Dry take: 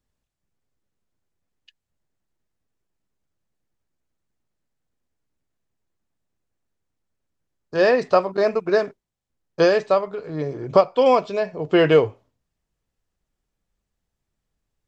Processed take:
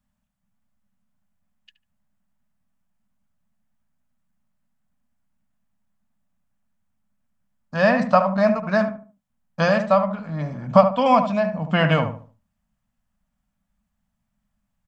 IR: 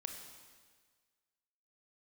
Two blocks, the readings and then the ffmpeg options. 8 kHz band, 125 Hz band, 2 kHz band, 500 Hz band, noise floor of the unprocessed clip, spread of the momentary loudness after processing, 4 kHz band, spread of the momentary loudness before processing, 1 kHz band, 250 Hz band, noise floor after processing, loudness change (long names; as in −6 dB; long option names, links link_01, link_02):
can't be measured, +7.0 dB, +2.5 dB, −2.5 dB, −82 dBFS, 12 LU, −1.0 dB, 12 LU, +3.5 dB, +3.0 dB, −77 dBFS, 0.0 dB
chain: -filter_complex "[0:a]aexciter=amount=3.7:drive=5.2:freq=3300,firequalizer=gain_entry='entry(140,0);entry(210,12);entry(380,-28);entry(590,0);entry(1100,2);entry(2400,-1);entry(3900,-16)':delay=0.05:min_phase=1,asplit=2[link_01][link_02];[link_02]adelay=73,lowpass=frequency=1200:poles=1,volume=-7dB,asplit=2[link_03][link_04];[link_04]adelay=73,lowpass=frequency=1200:poles=1,volume=0.33,asplit=2[link_05][link_06];[link_06]adelay=73,lowpass=frequency=1200:poles=1,volume=0.33,asplit=2[link_07][link_08];[link_08]adelay=73,lowpass=frequency=1200:poles=1,volume=0.33[link_09];[link_03][link_05][link_07][link_09]amix=inputs=4:normalize=0[link_10];[link_01][link_10]amix=inputs=2:normalize=0,volume=2dB"